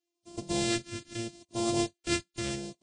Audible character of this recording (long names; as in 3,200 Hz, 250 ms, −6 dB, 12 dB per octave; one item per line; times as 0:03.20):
a buzz of ramps at a fixed pitch in blocks of 128 samples
phaser sweep stages 2, 0.77 Hz, lowest notch 800–1,600 Hz
Ogg Vorbis